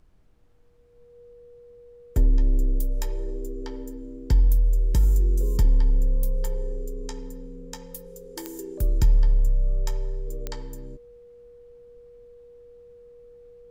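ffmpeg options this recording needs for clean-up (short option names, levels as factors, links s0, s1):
-af "adeclick=t=4,bandreject=f=480:w=30,agate=range=0.0891:threshold=0.00891"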